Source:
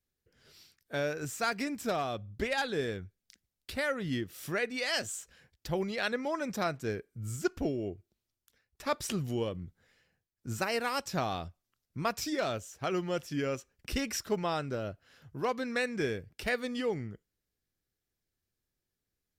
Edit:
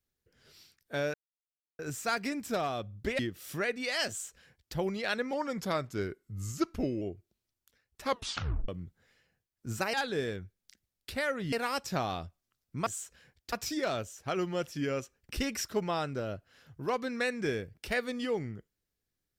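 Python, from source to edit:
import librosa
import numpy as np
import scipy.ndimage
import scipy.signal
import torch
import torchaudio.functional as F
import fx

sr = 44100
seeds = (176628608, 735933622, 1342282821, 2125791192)

y = fx.edit(x, sr, fx.insert_silence(at_s=1.14, length_s=0.65),
    fx.move(start_s=2.54, length_s=1.59, to_s=10.74),
    fx.duplicate(start_s=5.03, length_s=0.66, to_s=12.08),
    fx.speed_span(start_s=6.27, length_s=1.55, speed=0.92),
    fx.tape_stop(start_s=8.86, length_s=0.63), tone=tone)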